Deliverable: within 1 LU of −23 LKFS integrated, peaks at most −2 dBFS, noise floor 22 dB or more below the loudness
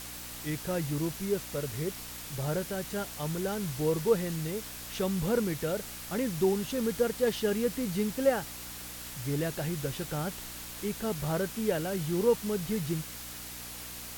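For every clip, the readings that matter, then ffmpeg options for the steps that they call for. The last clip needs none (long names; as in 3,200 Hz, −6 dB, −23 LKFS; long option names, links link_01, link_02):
mains hum 60 Hz; hum harmonics up to 300 Hz; level of the hum −49 dBFS; background noise floor −43 dBFS; target noise floor −54 dBFS; integrated loudness −32.0 LKFS; sample peak −12.5 dBFS; target loudness −23.0 LKFS
→ -af "bandreject=frequency=60:width_type=h:width=4,bandreject=frequency=120:width_type=h:width=4,bandreject=frequency=180:width_type=h:width=4,bandreject=frequency=240:width_type=h:width=4,bandreject=frequency=300:width_type=h:width=4"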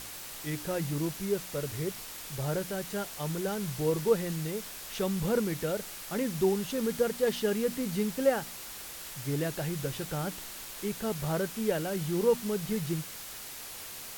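mains hum none found; background noise floor −43 dBFS; target noise floor −54 dBFS
→ -af "afftdn=noise_reduction=11:noise_floor=-43"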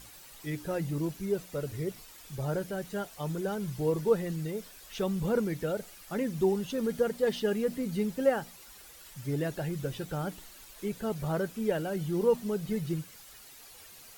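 background noise floor −52 dBFS; target noise floor −54 dBFS
→ -af "afftdn=noise_reduction=6:noise_floor=-52"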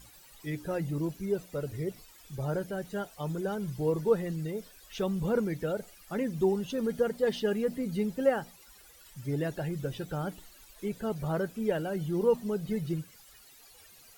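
background noise floor −56 dBFS; integrated loudness −32.0 LKFS; sample peak −13.0 dBFS; target loudness −23.0 LKFS
→ -af "volume=9dB"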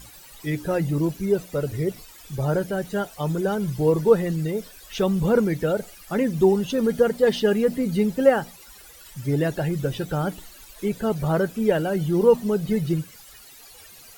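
integrated loudness −23.0 LKFS; sample peak −4.0 dBFS; background noise floor −47 dBFS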